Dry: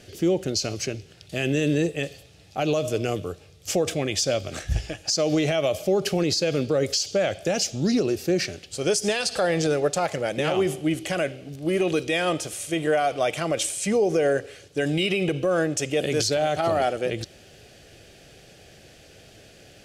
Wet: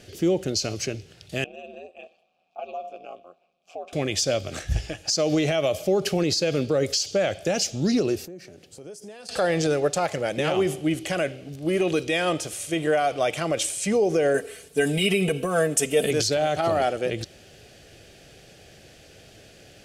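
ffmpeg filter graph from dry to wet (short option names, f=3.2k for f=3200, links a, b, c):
-filter_complex "[0:a]asettb=1/sr,asplit=3[a][b][c];[a]atrim=end=1.444[d];[b]atrim=start=1.44:end=3.93,asetpts=PTS-STARTPTS,afade=t=in:d=0.004:c=qsin,afade=t=out:st=2.486:d=0.004:c=qsin,aeval=exprs='val(0)*sin(2*PI*85*n/s)':c=same,asplit=3[e][f][g];[e]bandpass=f=730:t=q:w=8,volume=0dB[h];[f]bandpass=f=1.09k:t=q:w=8,volume=-6dB[i];[g]bandpass=f=2.44k:t=q:w=8,volume=-9dB[j];[h][i][j]amix=inputs=3:normalize=0[k];[c]atrim=start=3.926[l];[d][k]acrossfade=d=0.004:c1=hsin:c2=qsin[m];[m][l]acrossfade=d=0.004:c1=qsin:c2=hsin,asettb=1/sr,asplit=3[n][o][p];[n]atrim=end=8.254[q];[o]atrim=start=8.25:end=9.29,asetpts=PTS-STARTPTS,afade=t=in:d=0.004:c=qsin,afade=t=out:st=1.036:d=0.004:c=qsin,highpass=130,equalizer=f=3.5k:w=0.37:g=-11,acompressor=threshold=-43dB:ratio=3:attack=3.2:release=140:knee=1:detection=peak[r];[p]atrim=start=9.286[s];[q][r]acrossfade=d=0.004:c1=hsin:c2=qsin[t];[t][s]acrossfade=d=0.004:c1=qsin:c2=hsin,asettb=1/sr,asplit=3[u][v][w];[u]atrim=end=14.344[x];[v]atrim=start=14.34:end=16.11,asetpts=PTS-STARTPTS,afade=t=in:d=0.004:c=qsin,afade=t=out:st=1.766:d=0.004:c=qsin,highshelf=f=7.5k:t=q:w=1.5:g=9.5,aecho=1:1:4.5:0.76,atrim=end_sample=78057[y];[w]atrim=start=16.106[z];[x][y]acrossfade=d=0.004:c1=hsin:c2=qsin[aa];[aa][z]acrossfade=d=0.004:c1=qsin:c2=hsin"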